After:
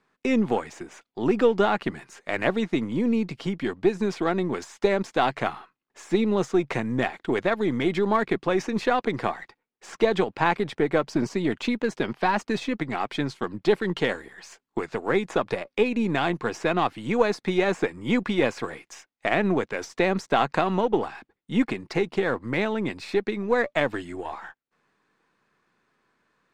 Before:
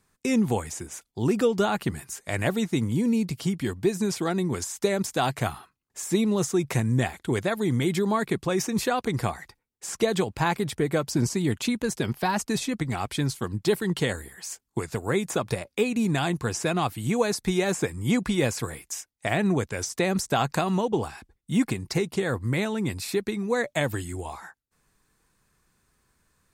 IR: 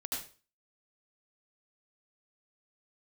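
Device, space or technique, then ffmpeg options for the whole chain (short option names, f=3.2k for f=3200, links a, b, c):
crystal radio: -af "highpass=240,lowpass=3k,aeval=exprs='if(lt(val(0),0),0.708*val(0),val(0))':c=same,volume=4.5dB"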